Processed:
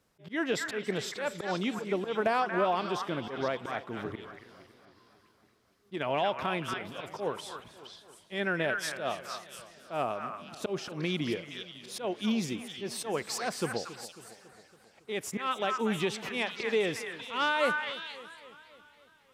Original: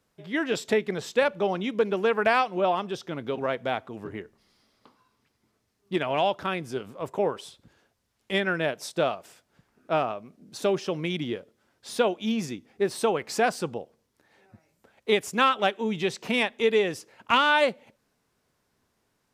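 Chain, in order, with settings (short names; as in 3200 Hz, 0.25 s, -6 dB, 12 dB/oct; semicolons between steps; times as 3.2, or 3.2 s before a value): 1.78–2.54 bell 2300 Hz -7 dB 1.7 oct; in parallel at -1 dB: compressor, threshold -31 dBFS, peak gain reduction 14.5 dB; on the sum: limiter -13.5 dBFS, peak gain reduction 8 dB; auto swell 0.118 s; wow and flutter 26 cents; on a send: delay with a stepping band-pass 0.233 s, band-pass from 1500 Hz, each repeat 1.4 oct, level -0.5 dB; on the sum: warbling echo 0.276 s, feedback 58%, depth 132 cents, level -16 dB; gain -5 dB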